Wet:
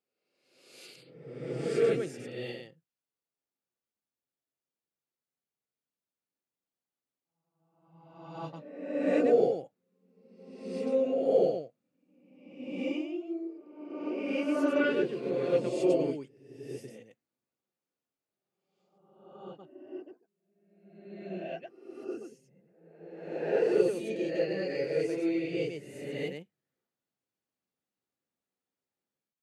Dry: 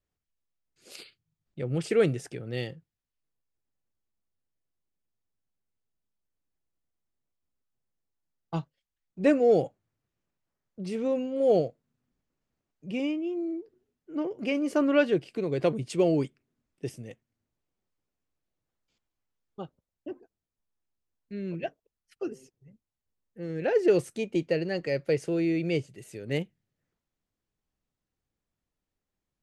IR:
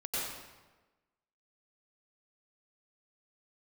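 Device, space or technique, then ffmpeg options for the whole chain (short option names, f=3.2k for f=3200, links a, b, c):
reverse reverb: -filter_complex "[0:a]highpass=180,areverse[a];[1:a]atrim=start_sample=2205[b];[a][b]afir=irnorm=-1:irlink=0,areverse,volume=-8dB"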